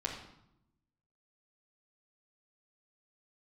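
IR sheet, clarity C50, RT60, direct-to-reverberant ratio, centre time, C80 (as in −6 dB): 5.5 dB, 0.80 s, −1.5 dB, 31 ms, 8.0 dB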